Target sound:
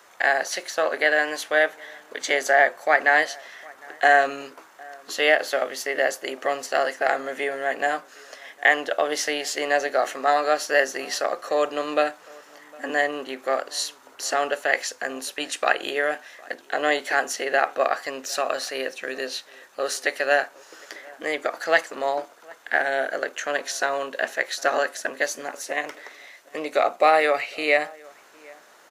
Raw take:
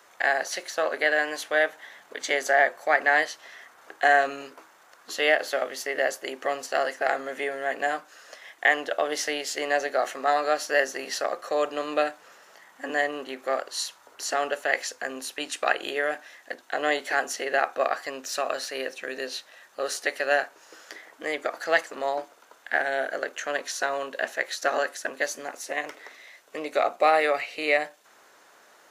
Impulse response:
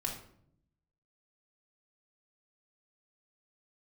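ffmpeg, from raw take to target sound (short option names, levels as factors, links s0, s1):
-filter_complex "[0:a]asplit=2[s0][s1];[s1]adelay=758,volume=0.0631,highshelf=f=4000:g=-17.1[s2];[s0][s2]amix=inputs=2:normalize=0,volume=1.41"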